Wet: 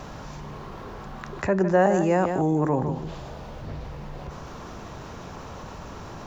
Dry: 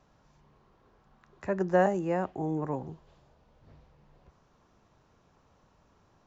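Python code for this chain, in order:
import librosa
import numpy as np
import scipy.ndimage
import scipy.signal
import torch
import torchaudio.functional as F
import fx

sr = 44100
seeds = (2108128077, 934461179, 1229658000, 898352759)

y = fx.high_shelf(x, sr, hz=fx.line((1.92, 4700.0), (2.68, 6500.0)), db=11.0, at=(1.92, 2.68), fade=0.02)
y = y + 10.0 ** (-12.0 / 20.0) * np.pad(y, (int(155 * sr / 1000.0), 0))[:len(y)]
y = fx.env_flatten(y, sr, amount_pct=50)
y = y * 10.0 ** (3.5 / 20.0)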